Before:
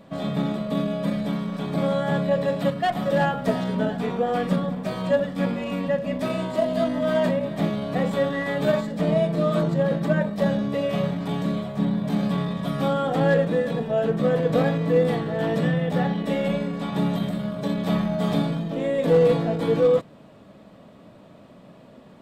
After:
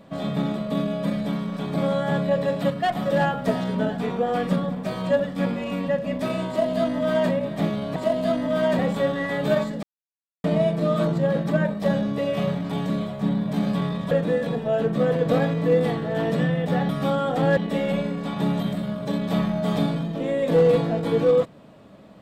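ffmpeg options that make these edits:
ffmpeg -i in.wav -filter_complex "[0:a]asplit=7[link_01][link_02][link_03][link_04][link_05][link_06][link_07];[link_01]atrim=end=7.962[link_08];[link_02]atrim=start=6.478:end=7.312[link_09];[link_03]atrim=start=7.958:end=9,asetpts=PTS-STARTPTS,afade=type=out:start_time=1.038:duration=0.004:curve=hsin,apad=pad_dur=0.61[link_10];[link_04]atrim=start=9:end=12.672,asetpts=PTS-STARTPTS,afade=type=in:duration=0.004:curve=hsin[link_11];[link_05]atrim=start=13.348:end=16.132[link_12];[link_06]atrim=start=12.668:end=13.352[link_13];[link_07]atrim=start=16.128[link_14];[link_08][link_09]acrossfade=duration=0.004:curve1=hsin:curve2=hsin[link_15];[link_10][link_11]concat=n=2:v=0:a=1[link_16];[link_15][link_16]acrossfade=duration=0.004:curve1=hsin:curve2=hsin[link_17];[link_17][link_12]acrossfade=duration=0.004:curve1=hsin:curve2=hsin[link_18];[link_18][link_13]acrossfade=duration=0.004:curve1=hsin:curve2=hsin[link_19];[link_19][link_14]acrossfade=duration=0.004:curve1=hsin:curve2=hsin" out.wav

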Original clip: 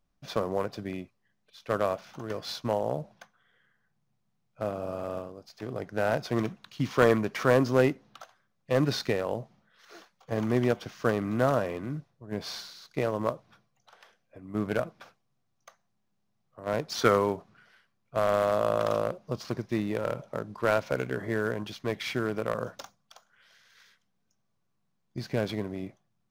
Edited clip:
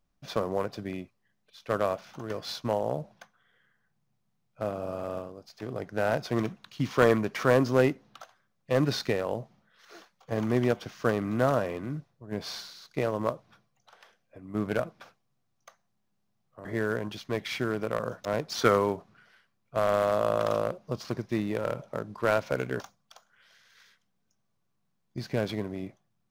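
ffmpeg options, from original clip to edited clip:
ffmpeg -i in.wav -filter_complex "[0:a]asplit=4[link_01][link_02][link_03][link_04];[link_01]atrim=end=16.652[link_05];[link_02]atrim=start=21.198:end=22.802[link_06];[link_03]atrim=start=16.648:end=21.202[link_07];[link_04]atrim=start=22.798[link_08];[link_05][link_06]acrossfade=duration=0.004:curve1=hsin:curve2=hsin[link_09];[link_09][link_07]acrossfade=duration=0.004:curve1=hsin:curve2=hsin[link_10];[link_10][link_08]acrossfade=duration=0.004:curve1=hsin:curve2=hsin" out.wav

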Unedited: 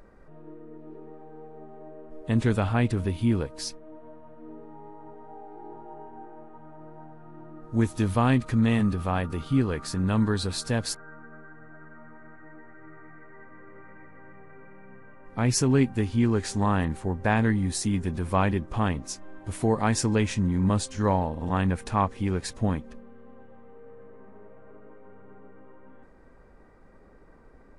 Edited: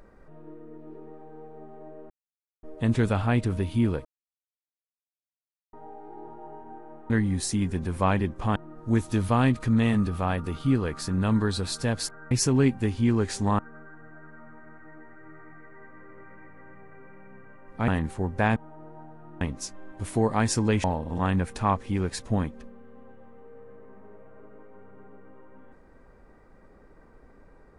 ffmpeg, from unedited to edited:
ffmpeg -i in.wav -filter_complex "[0:a]asplit=12[link_01][link_02][link_03][link_04][link_05][link_06][link_07][link_08][link_09][link_10][link_11][link_12];[link_01]atrim=end=2.1,asetpts=PTS-STARTPTS,afade=type=out:start_time=2.096:duration=0.004:curve=hsin,apad=pad_dur=0.53[link_13];[link_02]atrim=start=2.1:end=3.52,asetpts=PTS-STARTPTS,afade=type=in:duration=0.004:curve=hsin,afade=type=out:start_time=1.416:duration=0.004:curve=hsin[link_14];[link_03]atrim=start=3.52:end=5.2,asetpts=PTS-STARTPTS,volume=0[link_15];[link_04]atrim=start=5.2:end=6.572,asetpts=PTS-STARTPTS,afade=type=in:duration=0.004:curve=hsin[link_16];[link_05]atrim=start=17.418:end=18.882[link_17];[link_06]atrim=start=7.418:end=11.172[link_18];[link_07]atrim=start=15.458:end=16.742[link_19];[link_08]atrim=start=11.168:end=15.462[link_20];[link_09]atrim=start=16.738:end=17.422[link_21];[link_10]atrim=start=6.568:end=7.422[link_22];[link_11]atrim=start=18.878:end=20.312[link_23];[link_12]atrim=start=21.148[link_24];[link_13][link_14][link_15][link_16]concat=n=4:v=0:a=1[link_25];[link_25][link_17]acrossfade=duration=0.004:curve1=hsin:curve2=hsin[link_26];[link_26][link_18]acrossfade=duration=0.004:curve1=hsin:curve2=hsin[link_27];[link_27][link_19]acrossfade=duration=0.004:curve1=hsin:curve2=hsin[link_28];[link_28][link_20]acrossfade=duration=0.004:curve1=hsin:curve2=hsin[link_29];[link_29][link_21]acrossfade=duration=0.004:curve1=hsin:curve2=hsin[link_30];[link_30][link_22]acrossfade=duration=0.004:curve1=hsin:curve2=hsin[link_31];[link_31][link_23]acrossfade=duration=0.004:curve1=hsin:curve2=hsin[link_32];[link_32][link_24]acrossfade=duration=0.004:curve1=hsin:curve2=hsin" out.wav

